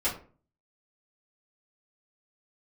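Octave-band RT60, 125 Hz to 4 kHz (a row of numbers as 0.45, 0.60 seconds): 0.60, 0.50, 0.45, 0.40, 0.30, 0.25 seconds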